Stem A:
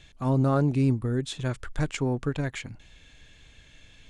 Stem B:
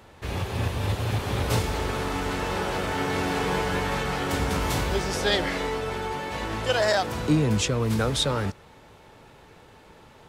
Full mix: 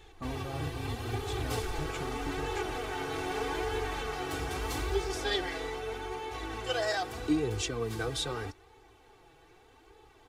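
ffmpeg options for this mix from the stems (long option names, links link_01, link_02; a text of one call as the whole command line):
ffmpeg -i stem1.wav -i stem2.wav -filter_complex "[0:a]acompressor=threshold=-31dB:ratio=6,volume=-2dB[link_01];[1:a]aecho=1:1:2.6:0.9,volume=-6.5dB[link_02];[link_01][link_02]amix=inputs=2:normalize=0,flanger=delay=2.3:depth=3.9:regen=37:speed=0.8:shape=sinusoidal" out.wav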